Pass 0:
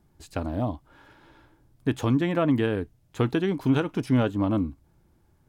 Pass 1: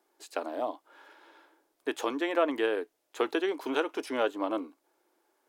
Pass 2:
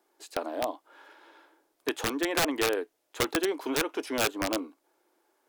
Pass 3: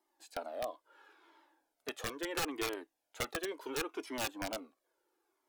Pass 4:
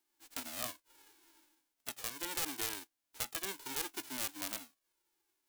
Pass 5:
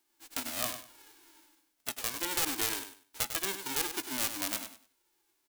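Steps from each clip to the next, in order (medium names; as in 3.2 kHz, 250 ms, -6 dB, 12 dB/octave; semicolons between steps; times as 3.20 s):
inverse Chebyshev high-pass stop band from 180 Hz, stop band 40 dB
integer overflow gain 20 dB; trim +1.5 dB
Shepard-style flanger falling 0.73 Hz; trim -4.5 dB
formants flattened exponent 0.1; trim -1.5 dB
feedback delay 99 ms, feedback 23%, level -9.5 dB; trim +6 dB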